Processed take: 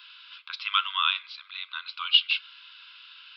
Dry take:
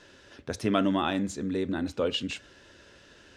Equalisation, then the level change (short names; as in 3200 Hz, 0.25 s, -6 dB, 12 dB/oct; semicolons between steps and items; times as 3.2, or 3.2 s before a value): brick-wall FIR band-pass 940–5900 Hz; tilt shelf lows -9.5 dB, about 1400 Hz; fixed phaser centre 1200 Hz, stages 8; +7.0 dB